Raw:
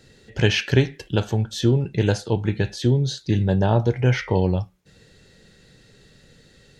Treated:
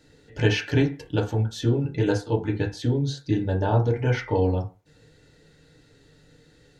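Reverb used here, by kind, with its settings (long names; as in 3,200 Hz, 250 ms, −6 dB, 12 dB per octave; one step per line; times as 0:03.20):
feedback delay network reverb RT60 0.31 s, low-frequency decay 0.85×, high-frequency decay 0.25×, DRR −1 dB
level −6.5 dB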